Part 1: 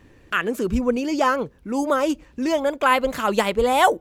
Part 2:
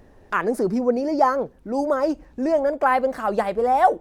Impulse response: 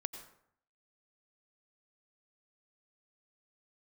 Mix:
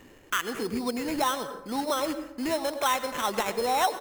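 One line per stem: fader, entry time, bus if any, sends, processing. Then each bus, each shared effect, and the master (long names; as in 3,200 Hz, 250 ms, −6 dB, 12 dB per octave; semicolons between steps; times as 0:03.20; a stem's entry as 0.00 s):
−0.5 dB, 0.00 s, send −4.5 dB, Bessel high-pass filter 250 Hz, order 2; sample-rate reduction 4,700 Hz, jitter 0%; automatic ducking −7 dB, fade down 0.30 s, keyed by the second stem
−10.0 dB, 1.1 ms, no send, no processing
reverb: on, RT60 0.65 s, pre-delay 83 ms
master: downward compressor 2 to 1, threshold −28 dBFS, peak gain reduction 10 dB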